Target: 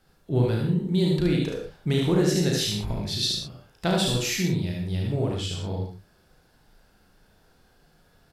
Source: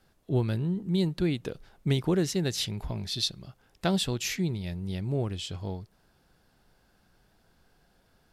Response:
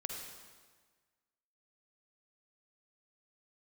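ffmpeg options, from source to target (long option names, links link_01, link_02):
-filter_complex "[0:a]aecho=1:1:34|73:0.562|0.668[link_01];[1:a]atrim=start_sample=2205,atrim=end_sample=6174,asetrate=48510,aresample=44100[link_02];[link_01][link_02]afir=irnorm=-1:irlink=0,volume=4.5dB"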